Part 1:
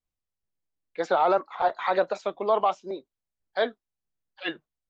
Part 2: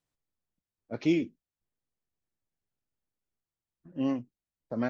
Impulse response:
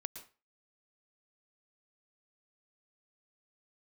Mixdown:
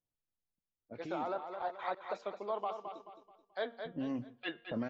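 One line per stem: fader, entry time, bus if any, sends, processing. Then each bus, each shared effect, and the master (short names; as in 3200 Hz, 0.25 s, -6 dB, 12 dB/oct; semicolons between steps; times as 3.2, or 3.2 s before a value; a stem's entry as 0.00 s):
-13.0 dB, 0.00 s, send -19 dB, echo send -7.5 dB, de-hum 233.2 Hz, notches 15; step gate "xxxxxxx.xx..xxx" 193 bpm -24 dB; LPF 5800 Hz 12 dB/oct
-5.5 dB, 0.00 s, send -6.5 dB, no echo send, low-pass opened by the level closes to 970 Hz, open at -27.5 dBFS; limiter -29.5 dBFS, peak gain reduction 14.5 dB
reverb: on, RT60 0.30 s, pre-delay 0.106 s
echo: feedback echo 0.216 s, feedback 34%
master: vocal rider within 4 dB 0.5 s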